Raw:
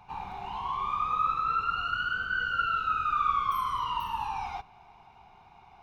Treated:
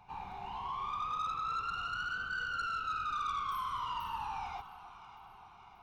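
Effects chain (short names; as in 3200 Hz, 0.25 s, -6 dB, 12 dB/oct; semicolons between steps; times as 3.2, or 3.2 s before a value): soft clip -26.5 dBFS, distortion -13 dB; echo with dull and thin repeats by turns 0.292 s, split 1000 Hz, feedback 75%, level -13 dB; gain -5 dB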